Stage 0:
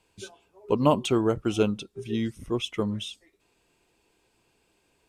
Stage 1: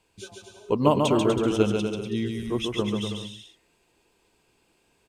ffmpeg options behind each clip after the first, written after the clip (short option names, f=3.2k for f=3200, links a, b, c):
-af "aecho=1:1:140|245|323.8|382.8|427.1:0.631|0.398|0.251|0.158|0.1"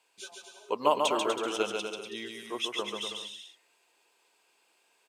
-af "highpass=650"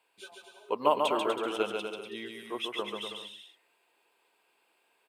-af "equalizer=f=6.2k:t=o:w=0.87:g=-14"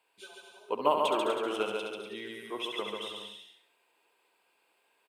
-af "aecho=1:1:69|138|207|276|345:0.447|0.174|0.0679|0.0265|0.0103,volume=-1.5dB"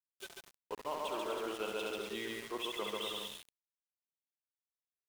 -af "areverse,acompressor=threshold=-36dB:ratio=16,areverse,aeval=exprs='val(0)*gte(abs(val(0)),0.00501)':c=same,volume=1.5dB"